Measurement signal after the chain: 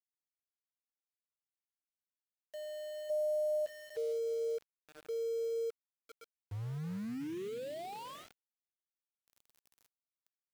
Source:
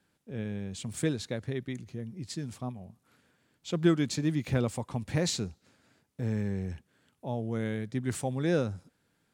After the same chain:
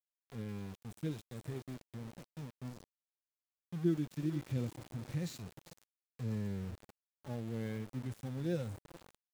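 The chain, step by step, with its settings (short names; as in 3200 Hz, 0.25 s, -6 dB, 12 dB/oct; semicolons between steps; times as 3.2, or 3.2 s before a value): bell 1000 Hz -6 dB 1.5 oct; diffused feedback echo 0.463 s, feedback 45%, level -15.5 dB; harmonic-percussive split percussive -18 dB; sample gate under -40.5 dBFS; gain -6 dB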